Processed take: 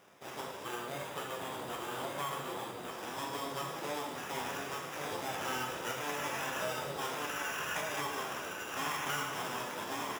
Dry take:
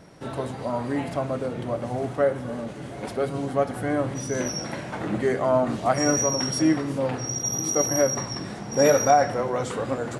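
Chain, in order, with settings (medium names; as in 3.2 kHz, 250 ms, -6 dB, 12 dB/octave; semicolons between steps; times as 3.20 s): sample-rate reducer 4.3 kHz, jitter 0%; full-wave rectifier; reverberation RT60 0.80 s, pre-delay 18 ms, DRR 2 dB; compression 4:1, threshold -25 dBFS, peak gain reduction 9.5 dB; high-pass 120 Hz 12 dB/octave; bass shelf 270 Hz -8 dB; delay 1151 ms -3.5 dB; flange 1.5 Hz, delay 9.5 ms, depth 4.1 ms, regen -40%; 0.65–2.91 s: peaking EQ 5.4 kHz -9 dB 0.21 oct; trim -3 dB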